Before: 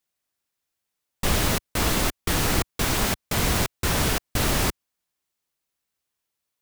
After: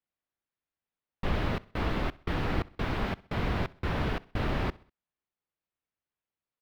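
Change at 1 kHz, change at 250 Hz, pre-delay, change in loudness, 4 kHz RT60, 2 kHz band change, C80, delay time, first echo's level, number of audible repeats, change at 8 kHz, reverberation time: -6.5 dB, -5.5 dB, no reverb, -9.0 dB, no reverb, -8.5 dB, no reverb, 65 ms, -23.0 dB, 2, -31.5 dB, no reverb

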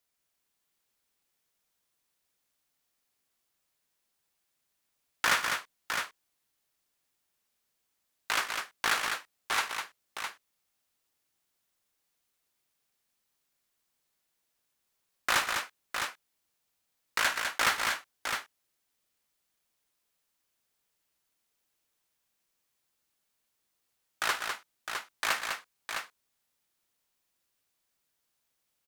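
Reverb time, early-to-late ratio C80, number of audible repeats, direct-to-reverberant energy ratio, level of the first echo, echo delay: no reverb, no reverb, 4, no reverb, -15.5 dB, 53 ms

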